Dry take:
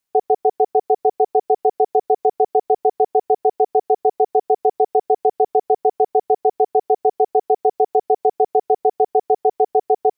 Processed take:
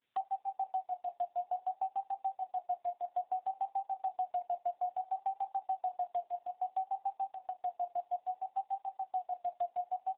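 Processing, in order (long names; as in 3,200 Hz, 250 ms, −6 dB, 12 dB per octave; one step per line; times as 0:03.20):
camcorder AGC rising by 32 dB per second
ambience of single reflections 16 ms −9 dB, 31 ms −5.5 dB, 76 ms −18 dB
flanger 0.66 Hz, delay 4.6 ms, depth 5 ms, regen +48%
parametric band 860 Hz −12.5 dB 2 octaves
0:07.31–0:07.75: downward compressor 20 to 1, threshold −30 dBFS, peak gain reduction 9.5 dB
sample-and-hold tremolo
Butterworth high-pass 660 Hz 96 dB per octave
pitch vibrato 0.6 Hz 84 cents
single-tap delay 895 ms −23.5 dB
brickwall limiter −31 dBFS, peak gain reduction 10 dB
transient designer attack +3 dB, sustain −6 dB
level +2 dB
AMR narrowband 7.4 kbit/s 8,000 Hz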